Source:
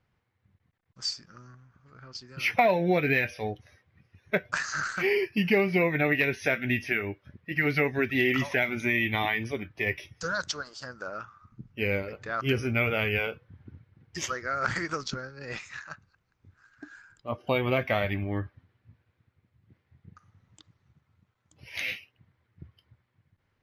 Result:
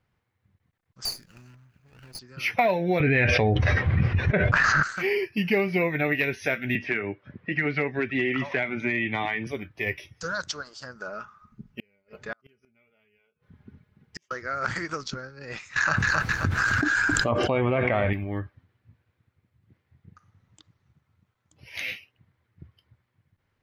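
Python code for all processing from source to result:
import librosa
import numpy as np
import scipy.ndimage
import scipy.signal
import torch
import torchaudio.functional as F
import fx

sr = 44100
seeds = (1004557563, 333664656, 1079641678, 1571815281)

y = fx.chain(x, sr, fx.lower_of_two(delay_ms=0.46),
    fx.high_shelf(hz=11000.0, db=11.0), at=(1.05, 2.19))
y = fx.chain(y, sr, fx.lowpass(hz=2600.0, slope=12),
    fx.low_shelf(hz=140.0, db=10.0),
    fx.env_flatten(amount_pct=100), at=(3.0, 4.83))
y = fx.chain(y, sr, fx.clip_hard(threshold_db=-16.5),
    fx.bandpass_edges(low_hz=110.0, high_hz=2800.0),
    fx.band_squash(depth_pct=70), at=(6.75, 9.47))
y = fx.chain(y, sr, fx.comb(ms=4.8, depth=0.56),
    fx.gate_flip(shuts_db=-22.0, range_db=-41), at=(10.95, 14.31))
y = fx.chain(y, sr, fx.env_lowpass_down(base_hz=1900.0, full_db=-27.0),
    fx.echo_feedback(ms=265, feedback_pct=32, wet_db=-15),
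    fx.env_flatten(amount_pct=100), at=(15.76, 18.13))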